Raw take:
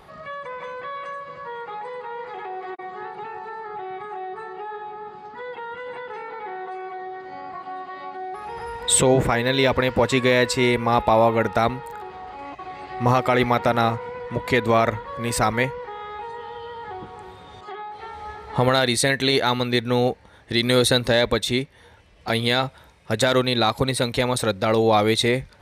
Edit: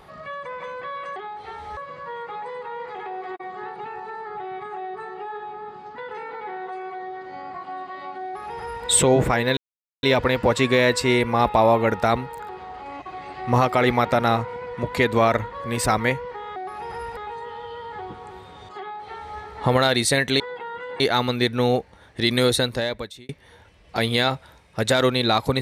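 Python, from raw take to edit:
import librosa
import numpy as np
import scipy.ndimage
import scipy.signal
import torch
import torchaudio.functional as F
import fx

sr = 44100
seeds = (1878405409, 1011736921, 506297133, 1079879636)

y = fx.edit(x, sr, fx.move(start_s=5.37, length_s=0.6, to_s=19.32),
    fx.duplicate(start_s=8.23, length_s=0.61, to_s=16.09),
    fx.insert_silence(at_s=9.56, length_s=0.46),
    fx.duplicate(start_s=17.71, length_s=0.61, to_s=1.16),
    fx.fade_out_span(start_s=20.64, length_s=0.97), tone=tone)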